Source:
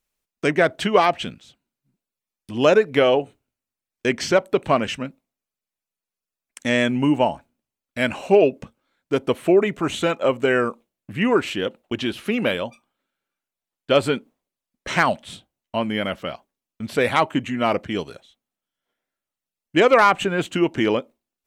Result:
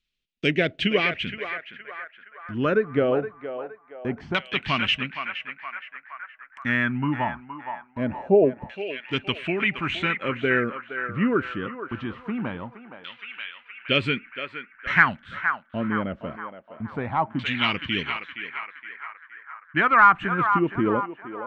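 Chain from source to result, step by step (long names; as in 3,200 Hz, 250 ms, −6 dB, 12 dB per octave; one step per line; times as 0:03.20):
all-pass phaser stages 2, 0.39 Hz, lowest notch 490–1,000 Hz
feedback echo with a band-pass in the loop 468 ms, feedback 66%, band-pass 1,400 Hz, level −6 dB
auto-filter low-pass saw down 0.23 Hz 750–3,500 Hz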